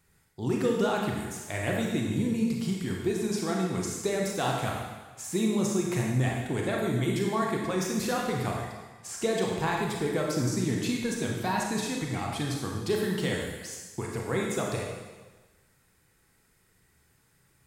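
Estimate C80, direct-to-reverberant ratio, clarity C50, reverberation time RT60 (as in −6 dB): 3.5 dB, −1.5 dB, 1.0 dB, 1.3 s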